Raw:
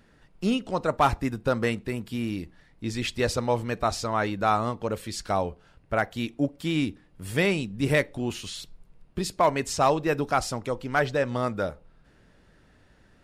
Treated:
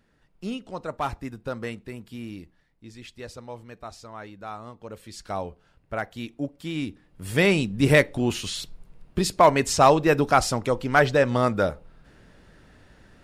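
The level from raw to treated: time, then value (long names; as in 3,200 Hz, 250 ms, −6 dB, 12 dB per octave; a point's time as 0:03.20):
0:02.39 −7 dB
0:02.89 −14 dB
0:04.60 −14 dB
0:05.37 −4.5 dB
0:06.74 −4.5 dB
0:07.59 +5.5 dB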